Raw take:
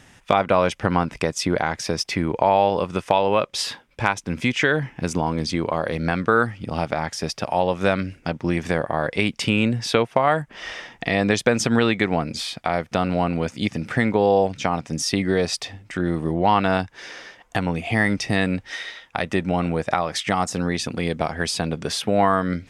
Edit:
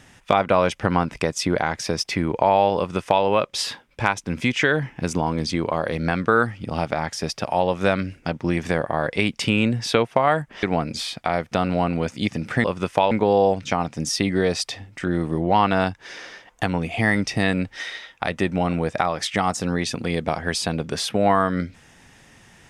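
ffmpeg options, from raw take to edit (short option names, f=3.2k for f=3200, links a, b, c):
-filter_complex "[0:a]asplit=4[a][b][c][d];[a]atrim=end=10.632[e];[b]atrim=start=12.028:end=14.042[f];[c]atrim=start=2.768:end=3.242[g];[d]atrim=start=14.038[h];[e][f]acrossfade=d=0.004:c1=hsin:c2=hsin[i];[i][g]acrossfade=d=0.004:c1=hsin:c2=hsin[j];[j][h]acrossfade=d=0.004:c1=hsin:c2=hsin"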